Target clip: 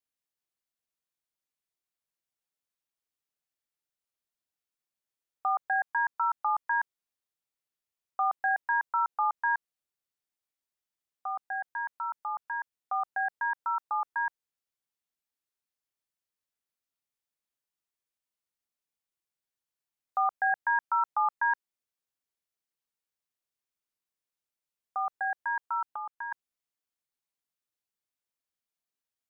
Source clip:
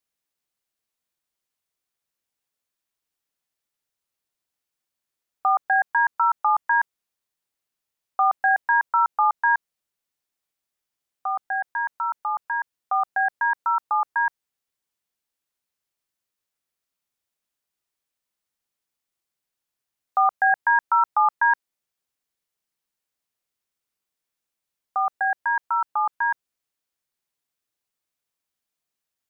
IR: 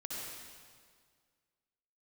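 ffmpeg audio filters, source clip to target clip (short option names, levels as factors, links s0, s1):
-filter_complex "[0:a]asettb=1/sr,asplit=3[s0][s1][s2];[s0]atrim=end=25.914[s3];[s1]atrim=start=25.91:end=26.32,asetpts=PTS-STARTPTS,afade=t=in:d=0.004:c=qsin,afade=t=out:st=0.406:d=0.004:c=qsin,acompressor=threshold=0.0251:ratio=2[s4];[s2]atrim=start=26.316[s5];[s3][s4]acrossfade=d=0.004:c1=hsin:c2=qsin[s6];[s6][s5]acrossfade=d=0.004:c1=qsin:c2=hsin,volume=0.398"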